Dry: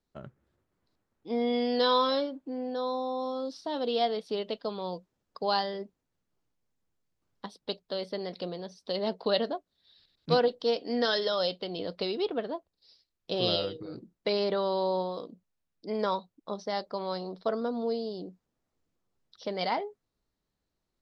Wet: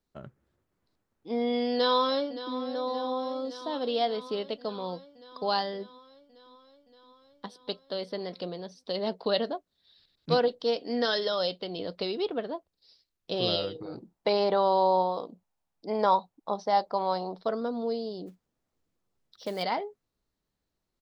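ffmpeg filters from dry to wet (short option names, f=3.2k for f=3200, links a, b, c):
-filter_complex "[0:a]asplit=2[a][b];[b]afade=t=in:st=1.73:d=0.01,afade=t=out:st=2.56:d=0.01,aecho=0:1:570|1140|1710|2280|2850|3420|3990|4560|5130|5700|6270:0.211349|0.158512|0.118884|0.0891628|0.0668721|0.0501541|0.0376156|0.0282117|0.0211588|0.0158691|0.0119018[c];[a][c]amix=inputs=2:normalize=0,asettb=1/sr,asplit=3[d][e][f];[d]atrim=end=13.754[g];[e]atrim=start=13.75:end=17.41,asetpts=PTS-STARTPTS,afade=t=in:d=0.004:c=qsin,afade=t=out:st=3.656:d=0.004:c=qsin,equalizer=f=830:w=1.8:g=11.5[h];[f]atrim=start=17.406[i];[g][h]acrossfade=d=0.004:c1=hsin:c2=qsin[j];[j][i]acrossfade=d=0.004:c1=qsin:c2=hsin,asplit=3[k][l][m];[k]afade=t=out:st=18.26:d=0.02[n];[l]acrusher=bits=5:mode=log:mix=0:aa=0.000001,afade=t=in:st=18.26:d=0.02,afade=t=out:st=19.62:d=0.02[o];[m]afade=t=in:st=19.62:d=0.02[p];[n][o][p]amix=inputs=3:normalize=0"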